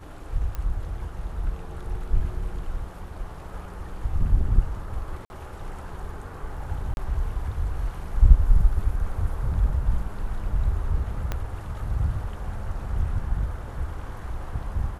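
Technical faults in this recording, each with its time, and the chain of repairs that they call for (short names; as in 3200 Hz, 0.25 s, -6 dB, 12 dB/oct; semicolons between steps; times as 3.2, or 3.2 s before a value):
0.55 pop -19 dBFS
5.25–5.3 gap 51 ms
6.94–6.97 gap 31 ms
11.32 pop -14 dBFS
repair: de-click; interpolate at 5.25, 51 ms; interpolate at 6.94, 31 ms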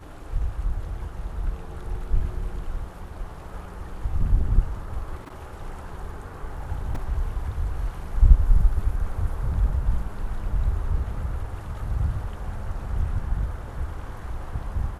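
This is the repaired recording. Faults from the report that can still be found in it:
11.32 pop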